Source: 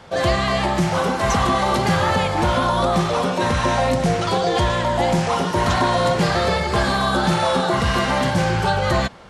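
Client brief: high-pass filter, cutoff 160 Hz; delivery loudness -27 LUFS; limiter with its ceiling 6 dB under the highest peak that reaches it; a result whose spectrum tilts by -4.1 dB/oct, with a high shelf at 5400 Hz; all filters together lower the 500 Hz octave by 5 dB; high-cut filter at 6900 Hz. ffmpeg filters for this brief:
-af "highpass=160,lowpass=6.9k,equalizer=f=500:t=o:g=-6.5,highshelf=f=5.4k:g=5,volume=-3.5dB,alimiter=limit=-18.5dB:level=0:latency=1"

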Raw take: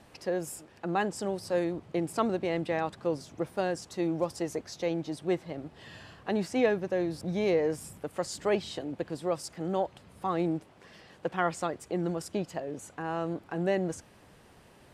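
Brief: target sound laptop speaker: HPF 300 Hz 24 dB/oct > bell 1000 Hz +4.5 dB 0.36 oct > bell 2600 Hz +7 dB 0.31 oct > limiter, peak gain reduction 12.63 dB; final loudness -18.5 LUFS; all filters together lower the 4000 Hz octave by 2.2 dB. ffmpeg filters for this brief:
-af "highpass=f=300:w=0.5412,highpass=f=300:w=1.3066,equalizer=f=1k:t=o:w=0.36:g=4.5,equalizer=f=2.6k:t=o:w=0.31:g=7,equalizer=f=4k:t=o:g=-5,volume=18.5dB,alimiter=limit=-7dB:level=0:latency=1"

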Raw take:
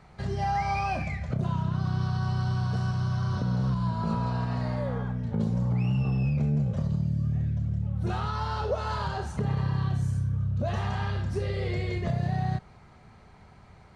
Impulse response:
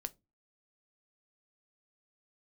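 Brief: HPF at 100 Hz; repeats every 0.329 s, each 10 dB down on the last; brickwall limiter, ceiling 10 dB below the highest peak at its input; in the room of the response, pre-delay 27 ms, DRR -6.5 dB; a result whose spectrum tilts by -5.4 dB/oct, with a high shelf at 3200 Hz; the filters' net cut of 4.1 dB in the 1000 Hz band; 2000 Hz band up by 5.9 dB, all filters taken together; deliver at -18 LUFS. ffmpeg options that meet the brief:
-filter_complex "[0:a]highpass=100,equalizer=f=1k:t=o:g=-8,equalizer=f=2k:t=o:g=7,highshelf=f=3.2k:g=8.5,alimiter=level_in=2dB:limit=-24dB:level=0:latency=1,volume=-2dB,aecho=1:1:329|658|987|1316:0.316|0.101|0.0324|0.0104,asplit=2[a][b];[1:a]atrim=start_sample=2205,adelay=27[c];[b][c]afir=irnorm=-1:irlink=0,volume=9dB[d];[a][d]amix=inputs=2:normalize=0,volume=8.5dB"

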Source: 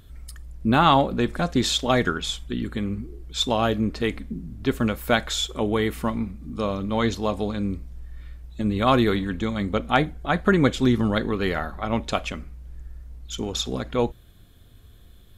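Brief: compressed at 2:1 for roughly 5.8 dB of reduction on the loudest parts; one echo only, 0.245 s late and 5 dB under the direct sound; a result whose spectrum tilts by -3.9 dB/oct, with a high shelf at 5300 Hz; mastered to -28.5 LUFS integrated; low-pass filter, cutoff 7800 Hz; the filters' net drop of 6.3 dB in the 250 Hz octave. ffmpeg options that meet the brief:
-af "lowpass=7.8k,equalizer=f=250:t=o:g=-8,highshelf=f=5.3k:g=-7,acompressor=threshold=-25dB:ratio=2,aecho=1:1:245:0.562,volume=0.5dB"

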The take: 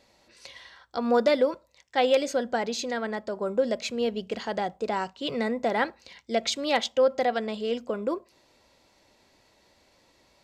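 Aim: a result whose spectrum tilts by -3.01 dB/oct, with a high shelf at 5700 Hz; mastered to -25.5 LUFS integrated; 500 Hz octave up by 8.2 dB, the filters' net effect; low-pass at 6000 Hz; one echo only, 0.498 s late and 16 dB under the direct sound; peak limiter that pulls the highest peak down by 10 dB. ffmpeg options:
-af "lowpass=6k,equalizer=f=500:t=o:g=9,highshelf=f=5.7k:g=-8.5,alimiter=limit=-14.5dB:level=0:latency=1,aecho=1:1:498:0.158,volume=-0.5dB"

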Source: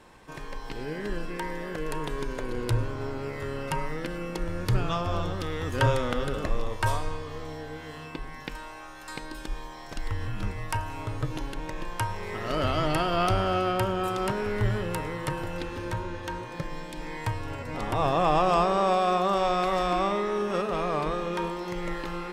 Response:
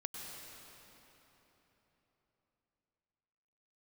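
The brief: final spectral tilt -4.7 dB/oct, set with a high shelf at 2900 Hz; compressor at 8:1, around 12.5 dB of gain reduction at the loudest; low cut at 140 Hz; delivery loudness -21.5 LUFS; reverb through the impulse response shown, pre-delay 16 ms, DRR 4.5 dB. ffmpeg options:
-filter_complex "[0:a]highpass=140,highshelf=f=2.9k:g=-4,acompressor=threshold=-32dB:ratio=8,asplit=2[a][b];[1:a]atrim=start_sample=2205,adelay=16[c];[b][c]afir=irnorm=-1:irlink=0,volume=-4dB[d];[a][d]amix=inputs=2:normalize=0,volume=14.5dB"

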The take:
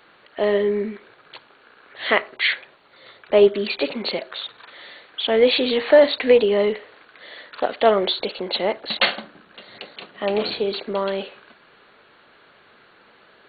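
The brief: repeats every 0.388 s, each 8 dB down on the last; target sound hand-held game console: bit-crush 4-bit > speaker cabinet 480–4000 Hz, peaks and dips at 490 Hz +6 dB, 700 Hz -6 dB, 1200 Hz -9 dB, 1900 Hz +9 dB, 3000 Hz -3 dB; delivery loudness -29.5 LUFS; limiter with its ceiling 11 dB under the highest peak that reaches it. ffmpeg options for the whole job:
-af "alimiter=limit=-12dB:level=0:latency=1,aecho=1:1:388|776|1164|1552|1940:0.398|0.159|0.0637|0.0255|0.0102,acrusher=bits=3:mix=0:aa=0.000001,highpass=480,equalizer=f=490:t=q:w=4:g=6,equalizer=f=700:t=q:w=4:g=-6,equalizer=f=1.2k:t=q:w=4:g=-9,equalizer=f=1.9k:t=q:w=4:g=9,equalizer=f=3k:t=q:w=4:g=-3,lowpass=f=4k:w=0.5412,lowpass=f=4k:w=1.3066,volume=-6.5dB"

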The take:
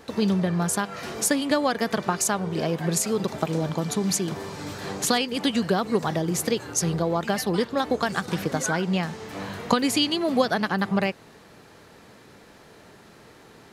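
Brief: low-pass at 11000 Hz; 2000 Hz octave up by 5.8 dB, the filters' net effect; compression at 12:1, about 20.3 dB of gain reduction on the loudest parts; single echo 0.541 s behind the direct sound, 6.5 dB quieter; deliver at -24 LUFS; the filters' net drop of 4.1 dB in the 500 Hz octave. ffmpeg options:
-af "lowpass=11k,equalizer=f=500:t=o:g=-5.5,equalizer=f=2k:t=o:g=8,acompressor=threshold=-37dB:ratio=12,aecho=1:1:541:0.473,volume=16dB"

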